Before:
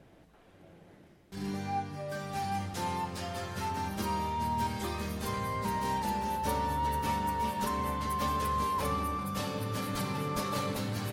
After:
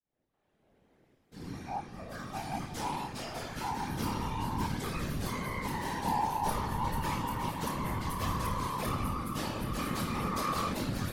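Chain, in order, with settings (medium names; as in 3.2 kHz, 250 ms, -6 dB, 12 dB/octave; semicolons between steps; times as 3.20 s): fade-in on the opening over 2.92 s; flutter echo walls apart 4.5 m, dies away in 0.32 s; whisper effect; trim -2 dB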